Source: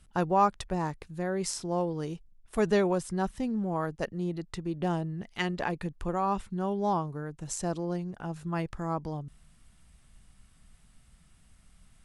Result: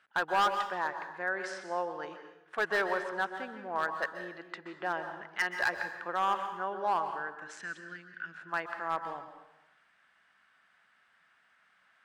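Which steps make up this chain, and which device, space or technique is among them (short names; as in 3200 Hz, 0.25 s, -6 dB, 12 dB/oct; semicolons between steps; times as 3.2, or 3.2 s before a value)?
megaphone (BPF 690–2700 Hz; bell 1600 Hz +11 dB 0.55 oct; hard clip -23.5 dBFS, distortion -10 dB); 7.54–8.34 EQ curve 250 Hz 0 dB, 830 Hz -30 dB, 1500 Hz +1 dB; plate-style reverb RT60 0.92 s, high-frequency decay 0.8×, pre-delay 0.115 s, DRR 7.5 dB; gain +1 dB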